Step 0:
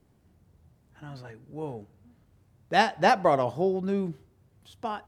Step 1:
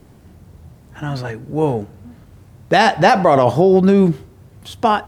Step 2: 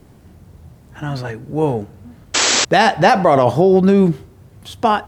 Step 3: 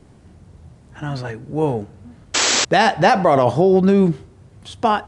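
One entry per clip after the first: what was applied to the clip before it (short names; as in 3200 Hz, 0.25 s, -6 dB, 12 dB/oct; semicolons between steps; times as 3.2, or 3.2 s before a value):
in parallel at -1 dB: negative-ratio compressor -28 dBFS, ratio -0.5; on the sum: maximiser +11.5 dB; gain -1 dB
painted sound noise, 2.34–2.65, 220–8000 Hz -15 dBFS
downsampling 22050 Hz; gain -2 dB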